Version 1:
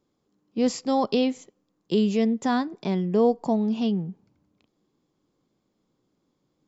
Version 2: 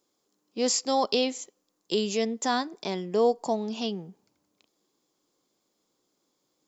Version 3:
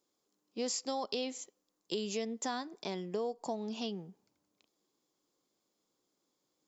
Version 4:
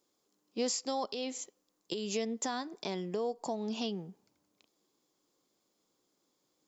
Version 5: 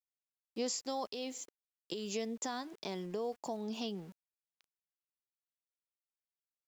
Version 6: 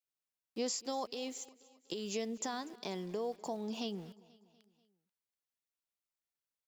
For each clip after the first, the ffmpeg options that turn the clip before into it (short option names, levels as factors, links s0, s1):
-af "bass=f=250:g=-15,treble=f=4000:g=11"
-af "acompressor=threshold=0.0501:ratio=6,volume=0.501"
-af "alimiter=level_in=1.41:limit=0.0631:level=0:latency=1:release=223,volume=0.708,volume=1.5"
-af "aeval=exprs='val(0)*gte(abs(val(0)),0.00251)':c=same,volume=0.668"
-af "aecho=1:1:243|486|729|972:0.0841|0.0463|0.0255|0.014"